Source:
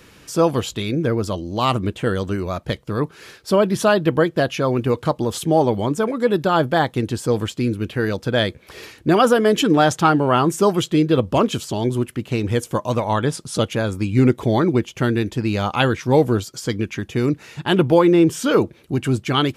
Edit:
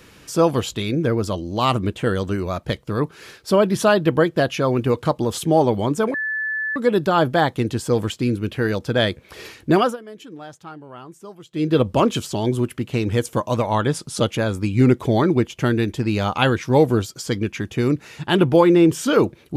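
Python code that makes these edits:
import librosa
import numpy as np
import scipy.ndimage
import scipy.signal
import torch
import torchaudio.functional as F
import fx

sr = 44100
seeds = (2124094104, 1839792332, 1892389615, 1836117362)

y = fx.edit(x, sr, fx.insert_tone(at_s=6.14, length_s=0.62, hz=1740.0, db=-21.5),
    fx.fade_down_up(start_s=9.14, length_s=1.96, db=-22.5, fade_s=0.21), tone=tone)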